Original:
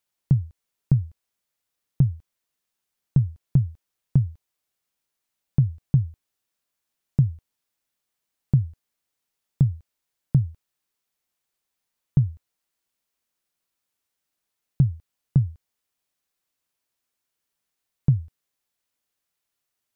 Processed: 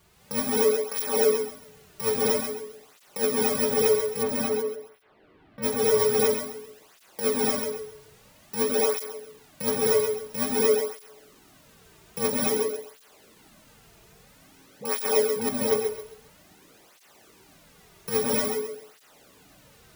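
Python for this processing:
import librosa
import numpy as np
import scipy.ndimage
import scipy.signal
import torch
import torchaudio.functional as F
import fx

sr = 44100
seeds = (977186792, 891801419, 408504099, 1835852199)

y = fx.bit_reversed(x, sr, seeds[0], block=128)
y = scipy.signal.sosfilt(scipy.signal.butter(4, 200.0, 'highpass', fs=sr, output='sos'), y)
y = fx.peak_eq(y, sr, hz=420.0, db=13.0, octaves=0.2)
y = fx.over_compress(y, sr, threshold_db=-28.0, ratio=-1.0)
y = fx.dispersion(y, sr, late='highs', ms=55.0, hz=530.0, at=(12.3, 15.49))
y = fx.dmg_noise_colour(y, sr, seeds[1], colour='pink', level_db=-62.0)
y = fx.air_absorb(y, sr, metres=430.0, at=(4.22, 5.62), fade=0.02)
y = fx.echo_feedback(y, sr, ms=133, feedback_pct=31, wet_db=-6.0)
y = fx.rev_gated(y, sr, seeds[2], gate_ms=280, shape='rising', drr_db=-4.5)
y = fx.flanger_cancel(y, sr, hz=0.5, depth_ms=4.0)
y = F.gain(torch.from_numpy(y), 4.0).numpy()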